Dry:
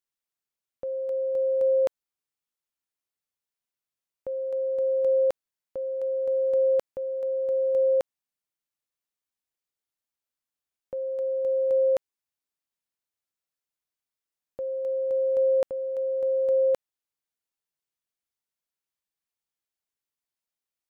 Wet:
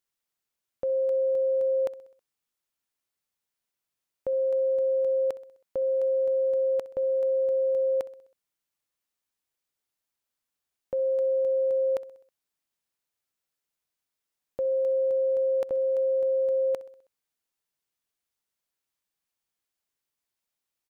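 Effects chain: peak limiter -26.5 dBFS, peak gain reduction 8.5 dB; feedback delay 64 ms, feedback 55%, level -18.5 dB; trim +4 dB

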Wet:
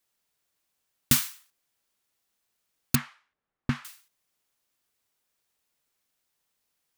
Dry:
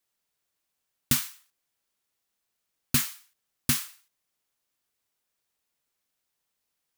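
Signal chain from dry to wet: 2.95–3.85 s: low-pass 1.6 kHz 12 dB/octave; trim +2.5 dB

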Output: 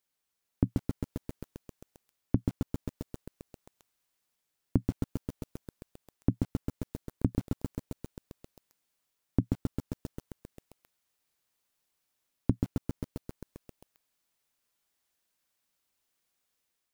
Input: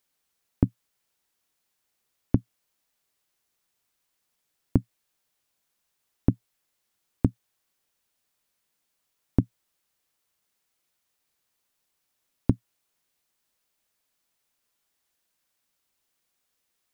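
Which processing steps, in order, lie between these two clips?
level rider gain up to 4 dB; bit-crushed delay 133 ms, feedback 80%, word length 6-bit, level -4 dB; trim -6.5 dB

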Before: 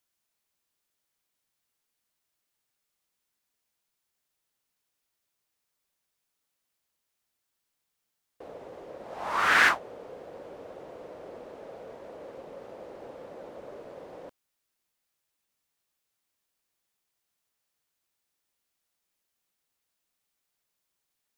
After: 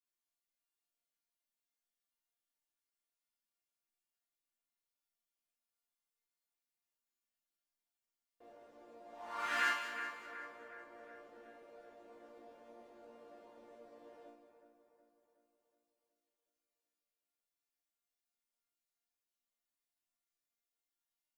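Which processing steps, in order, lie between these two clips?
chord resonator A#3 major, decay 0.44 s; two-band feedback delay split 2.1 kHz, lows 369 ms, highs 189 ms, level -9 dB; trim +5.5 dB

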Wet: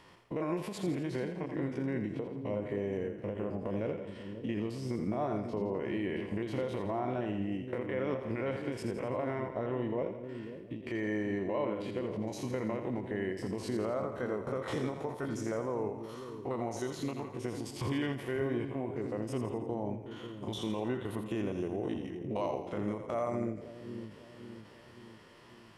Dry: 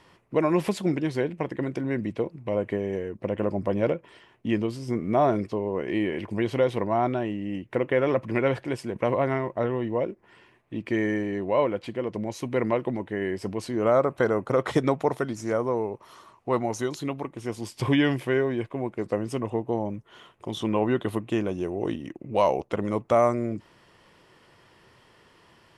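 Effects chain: spectrogram pixelated in time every 50 ms; compression 1.5:1, threshold -39 dBFS, peak gain reduction 8.5 dB; peak limiter -24.5 dBFS, peak gain reduction 7.5 dB; two-band feedback delay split 450 Hz, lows 540 ms, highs 84 ms, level -7.5 dB; endings held to a fixed fall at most 110 dB/s

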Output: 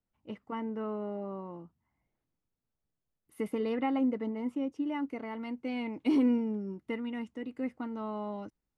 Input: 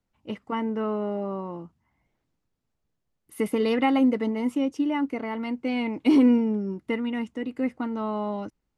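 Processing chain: treble shelf 3.1 kHz -6.5 dB, from 3.60 s -12 dB, from 4.87 s -2 dB; trim -8 dB

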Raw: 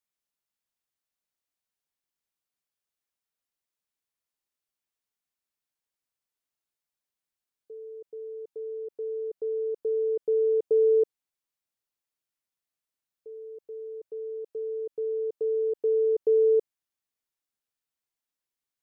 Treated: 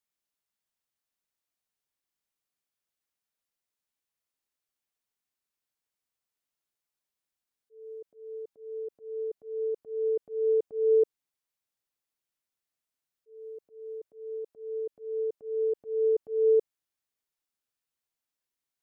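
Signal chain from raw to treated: slow attack 221 ms

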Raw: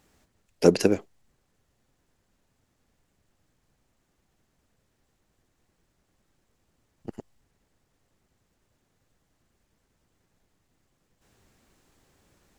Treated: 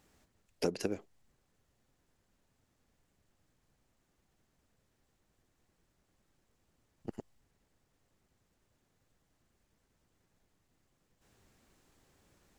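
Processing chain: compression 6:1, threshold -26 dBFS, peak gain reduction 14.5 dB; trim -4 dB

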